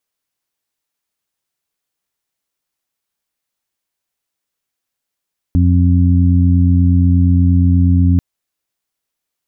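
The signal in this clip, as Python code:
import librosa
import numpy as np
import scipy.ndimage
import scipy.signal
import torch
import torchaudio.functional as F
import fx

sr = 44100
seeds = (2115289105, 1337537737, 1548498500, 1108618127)

y = fx.additive_steady(sr, length_s=2.64, hz=88.4, level_db=-9.0, upper_db=(-7.0, -7.0))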